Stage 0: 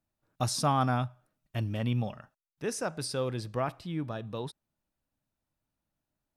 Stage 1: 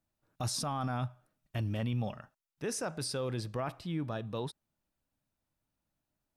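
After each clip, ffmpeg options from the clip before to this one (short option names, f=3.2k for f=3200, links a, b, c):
-af "alimiter=level_in=2.5dB:limit=-24dB:level=0:latency=1:release=17,volume=-2.5dB"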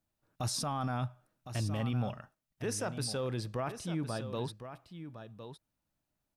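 -af "aecho=1:1:1059:0.299"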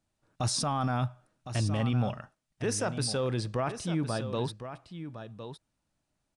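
-af "aresample=22050,aresample=44100,volume=5dB"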